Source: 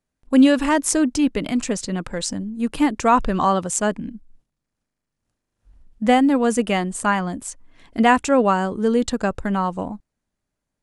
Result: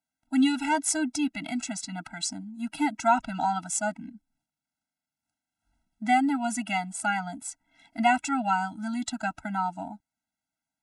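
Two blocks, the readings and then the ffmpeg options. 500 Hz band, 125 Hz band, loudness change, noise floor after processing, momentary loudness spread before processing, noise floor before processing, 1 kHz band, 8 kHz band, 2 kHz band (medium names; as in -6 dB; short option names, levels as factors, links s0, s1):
-14.5 dB, -12.0 dB, -8.0 dB, under -85 dBFS, 13 LU, -82 dBFS, -5.5 dB, -5.0 dB, -5.0 dB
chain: -af "highpass=f=590:p=1,afftfilt=real='re*eq(mod(floor(b*sr/1024/320),2),0)':imag='im*eq(mod(floor(b*sr/1024/320),2),0)':win_size=1024:overlap=0.75,volume=0.841"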